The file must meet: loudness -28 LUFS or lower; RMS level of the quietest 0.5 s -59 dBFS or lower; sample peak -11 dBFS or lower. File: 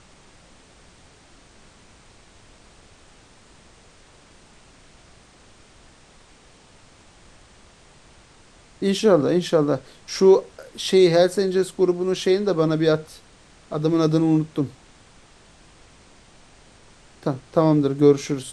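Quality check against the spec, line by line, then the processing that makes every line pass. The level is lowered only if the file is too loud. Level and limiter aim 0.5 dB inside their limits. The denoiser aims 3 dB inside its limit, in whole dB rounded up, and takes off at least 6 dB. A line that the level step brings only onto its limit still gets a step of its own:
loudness -20.5 LUFS: fail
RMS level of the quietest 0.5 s -51 dBFS: fail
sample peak -4.0 dBFS: fail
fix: denoiser 6 dB, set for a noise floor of -51 dBFS; gain -8 dB

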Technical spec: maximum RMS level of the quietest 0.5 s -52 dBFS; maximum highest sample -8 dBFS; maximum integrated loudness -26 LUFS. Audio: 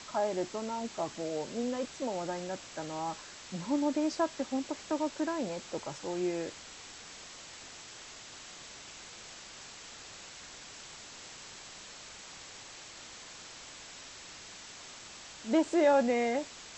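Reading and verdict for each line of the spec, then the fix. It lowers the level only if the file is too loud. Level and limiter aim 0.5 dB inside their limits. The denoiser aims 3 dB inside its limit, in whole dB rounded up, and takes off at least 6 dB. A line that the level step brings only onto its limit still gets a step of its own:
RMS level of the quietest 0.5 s -49 dBFS: fail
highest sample -16.0 dBFS: OK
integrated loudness -35.0 LUFS: OK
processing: denoiser 6 dB, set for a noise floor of -49 dBFS

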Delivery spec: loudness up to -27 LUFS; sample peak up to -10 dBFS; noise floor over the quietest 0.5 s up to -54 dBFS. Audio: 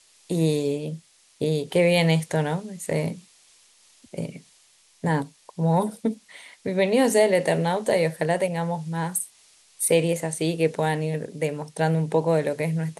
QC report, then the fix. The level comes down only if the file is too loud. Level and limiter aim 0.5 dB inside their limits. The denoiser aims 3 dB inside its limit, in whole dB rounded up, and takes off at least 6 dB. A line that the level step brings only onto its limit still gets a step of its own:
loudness -24.5 LUFS: fail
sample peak -7.0 dBFS: fail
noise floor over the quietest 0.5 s -58 dBFS: OK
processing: gain -3 dB; limiter -10.5 dBFS

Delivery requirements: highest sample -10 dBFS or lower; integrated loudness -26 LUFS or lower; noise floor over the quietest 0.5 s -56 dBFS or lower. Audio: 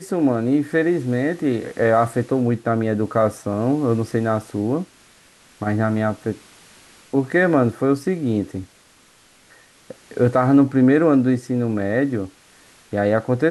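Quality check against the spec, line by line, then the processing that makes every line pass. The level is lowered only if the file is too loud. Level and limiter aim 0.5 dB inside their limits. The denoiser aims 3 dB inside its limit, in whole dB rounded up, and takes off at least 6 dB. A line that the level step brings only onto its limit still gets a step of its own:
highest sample -5.5 dBFS: fail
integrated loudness -20.0 LUFS: fail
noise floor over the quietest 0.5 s -53 dBFS: fail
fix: gain -6.5 dB

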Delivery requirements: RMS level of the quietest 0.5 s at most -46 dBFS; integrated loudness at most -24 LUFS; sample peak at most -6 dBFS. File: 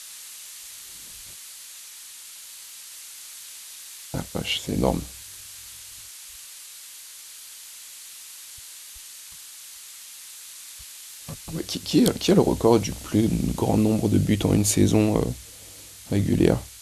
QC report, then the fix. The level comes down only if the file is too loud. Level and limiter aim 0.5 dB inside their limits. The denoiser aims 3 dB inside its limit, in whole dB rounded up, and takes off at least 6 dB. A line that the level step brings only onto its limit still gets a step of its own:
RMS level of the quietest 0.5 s -44 dBFS: fail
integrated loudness -22.5 LUFS: fail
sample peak -4.0 dBFS: fail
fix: denoiser 6 dB, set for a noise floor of -44 dBFS; gain -2 dB; limiter -6.5 dBFS

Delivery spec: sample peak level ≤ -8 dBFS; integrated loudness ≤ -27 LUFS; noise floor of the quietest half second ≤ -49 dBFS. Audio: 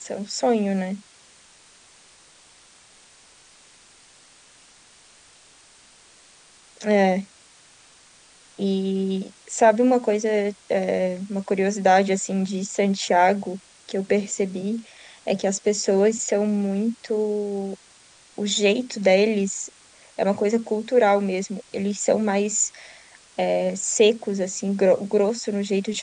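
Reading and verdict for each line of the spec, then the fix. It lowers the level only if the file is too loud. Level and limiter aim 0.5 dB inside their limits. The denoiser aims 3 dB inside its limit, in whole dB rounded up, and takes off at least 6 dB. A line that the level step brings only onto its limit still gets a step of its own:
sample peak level -4.5 dBFS: fail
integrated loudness -22.5 LUFS: fail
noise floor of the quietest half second -53 dBFS: OK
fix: gain -5 dB

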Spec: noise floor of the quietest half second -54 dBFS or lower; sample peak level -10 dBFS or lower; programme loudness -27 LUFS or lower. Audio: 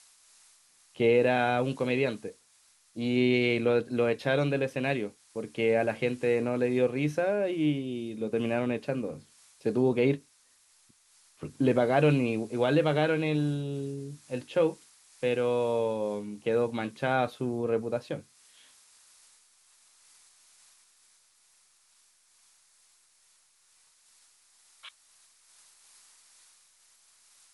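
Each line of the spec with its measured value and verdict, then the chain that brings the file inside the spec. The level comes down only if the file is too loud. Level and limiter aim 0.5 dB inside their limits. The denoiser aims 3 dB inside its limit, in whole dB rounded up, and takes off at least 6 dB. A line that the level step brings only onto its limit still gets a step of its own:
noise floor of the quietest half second -65 dBFS: OK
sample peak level -11.0 dBFS: OK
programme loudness -28.5 LUFS: OK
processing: none

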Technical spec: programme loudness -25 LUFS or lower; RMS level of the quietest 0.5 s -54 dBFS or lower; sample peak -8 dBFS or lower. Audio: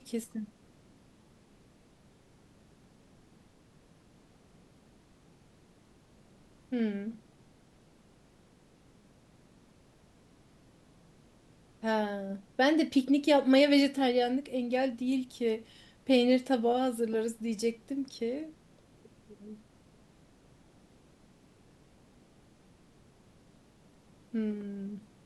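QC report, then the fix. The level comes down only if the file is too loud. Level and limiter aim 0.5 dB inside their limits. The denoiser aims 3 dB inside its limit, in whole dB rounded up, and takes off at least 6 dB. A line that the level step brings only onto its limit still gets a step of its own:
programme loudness -30.0 LUFS: OK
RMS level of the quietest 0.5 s -61 dBFS: OK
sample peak -13.0 dBFS: OK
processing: none

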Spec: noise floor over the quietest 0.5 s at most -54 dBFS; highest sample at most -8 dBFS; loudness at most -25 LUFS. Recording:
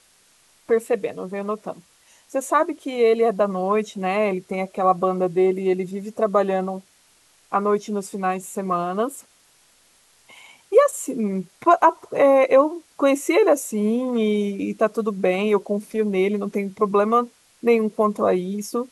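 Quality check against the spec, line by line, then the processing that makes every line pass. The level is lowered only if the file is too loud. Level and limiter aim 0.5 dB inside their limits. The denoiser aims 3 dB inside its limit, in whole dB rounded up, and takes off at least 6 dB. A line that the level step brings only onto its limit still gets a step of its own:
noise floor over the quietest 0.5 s -58 dBFS: OK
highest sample -4.0 dBFS: fail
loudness -21.5 LUFS: fail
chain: gain -4 dB; limiter -8.5 dBFS

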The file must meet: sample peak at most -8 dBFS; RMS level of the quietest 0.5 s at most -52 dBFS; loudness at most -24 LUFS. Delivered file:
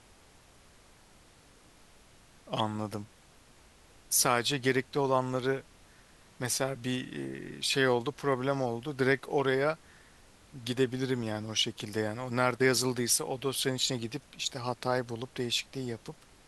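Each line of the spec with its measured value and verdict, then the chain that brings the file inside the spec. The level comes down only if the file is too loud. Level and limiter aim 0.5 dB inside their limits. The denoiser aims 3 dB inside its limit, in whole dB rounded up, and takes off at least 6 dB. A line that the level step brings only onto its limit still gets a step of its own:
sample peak -11.0 dBFS: OK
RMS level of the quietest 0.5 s -59 dBFS: OK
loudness -30.5 LUFS: OK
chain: none

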